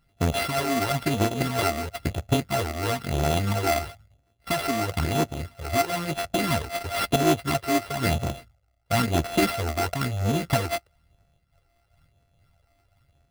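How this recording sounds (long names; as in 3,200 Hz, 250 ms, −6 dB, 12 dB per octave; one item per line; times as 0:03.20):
a buzz of ramps at a fixed pitch in blocks of 64 samples
phaser sweep stages 12, 1 Hz, lowest notch 150–2,300 Hz
aliases and images of a low sample rate 6,800 Hz, jitter 0%
amplitude modulation by smooth noise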